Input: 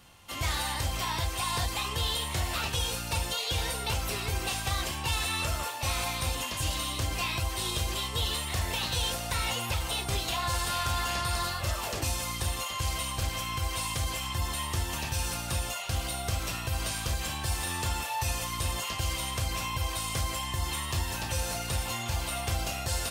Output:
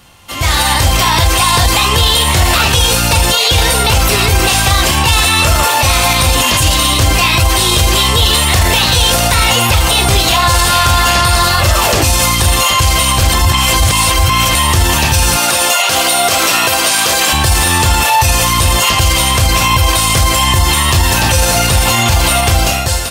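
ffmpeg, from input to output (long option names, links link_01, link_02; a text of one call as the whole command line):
ffmpeg -i in.wav -filter_complex "[0:a]asettb=1/sr,asplit=3[link_01][link_02][link_03];[link_01]atrim=end=15.374[link_04];[link_02]atrim=start=15.37:end=17.33,asetpts=PTS-STARTPTS,afade=type=in:duration=0.004:curve=qsin,afade=type=out:start_time=1.956:duration=0.004:curve=qsin,highpass=340[link_05];[link_03]atrim=start=17.326[link_06];[link_04][link_05]acrossfade=duration=0.004:curve1=hsin:curve2=qsin[link_07];[link_07][link_06]acrossfade=duration=0.004:curve1=qsin:curve2=hsin,asplit=3[link_08][link_09][link_10];[link_08]atrim=end=13.322[link_11];[link_09]atrim=start=13.318:end=14.552,asetpts=PTS-STARTPTS,areverse[link_12];[link_10]atrim=start=14.548[link_13];[link_11][link_12]acrossfade=duration=0.004:curve1=hsin:curve2=hsin[link_14];[link_14][link_13]acrossfade=duration=0.004:curve1=hsin:curve2=hsin,dynaudnorm=framelen=160:gausssize=9:maxgain=15.5dB,alimiter=level_in=13.5dB:limit=-1dB:release=50:level=0:latency=1,volume=-1dB" out.wav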